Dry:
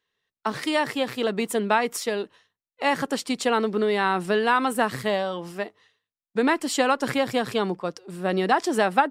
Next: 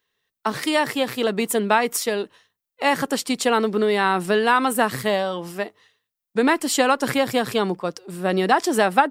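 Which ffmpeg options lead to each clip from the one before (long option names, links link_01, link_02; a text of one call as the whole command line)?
ffmpeg -i in.wav -af "highshelf=frequency=11000:gain=11.5,volume=3dB" out.wav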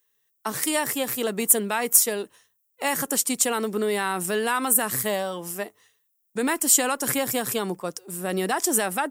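ffmpeg -i in.wav -filter_complex "[0:a]acrossover=split=1600[link_01][link_02];[link_01]alimiter=limit=-13dB:level=0:latency=1[link_03];[link_02]aexciter=amount=6.1:drive=3.5:freq=6100[link_04];[link_03][link_04]amix=inputs=2:normalize=0,volume=-4.5dB" out.wav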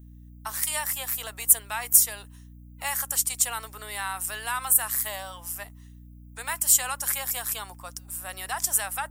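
ffmpeg -i in.wav -af "highpass=frequency=750:width=0.5412,highpass=frequency=750:width=1.3066,aeval=exprs='val(0)+0.00891*(sin(2*PI*60*n/s)+sin(2*PI*2*60*n/s)/2+sin(2*PI*3*60*n/s)/3+sin(2*PI*4*60*n/s)/4+sin(2*PI*5*60*n/s)/5)':channel_layout=same,highshelf=frequency=8600:gain=7.5,volume=-4.5dB" out.wav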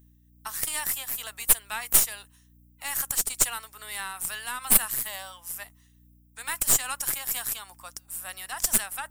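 ffmpeg -i in.wav -af "tiltshelf=frequency=740:gain=-5.5,aeval=exprs='1.68*(cos(1*acos(clip(val(0)/1.68,-1,1)))-cos(1*PI/2))+0.237*(cos(6*acos(clip(val(0)/1.68,-1,1)))-cos(6*PI/2))':channel_layout=same,tremolo=f=2.3:d=0.35,volume=-4.5dB" out.wav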